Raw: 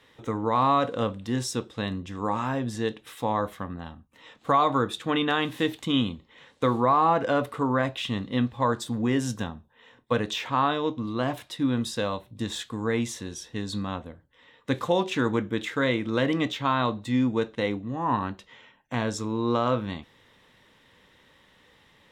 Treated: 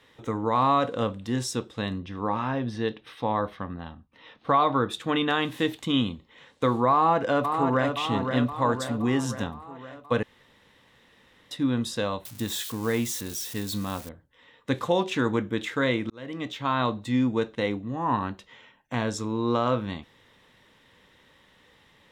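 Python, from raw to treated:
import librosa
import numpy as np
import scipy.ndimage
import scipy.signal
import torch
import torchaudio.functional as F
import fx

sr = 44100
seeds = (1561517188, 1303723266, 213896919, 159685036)

y = fx.savgol(x, sr, points=15, at=(1.98, 4.89), fade=0.02)
y = fx.echo_throw(y, sr, start_s=6.92, length_s=1.03, ms=520, feedback_pct=60, wet_db=-6.0)
y = fx.crossing_spikes(y, sr, level_db=-29.0, at=(12.25, 14.09))
y = fx.edit(y, sr, fx.room_tone_fill(start_s=10.23, length_s=1.28),
    fx.fade_in_span(start_s=16.1, length_s=0.72), tone=tone)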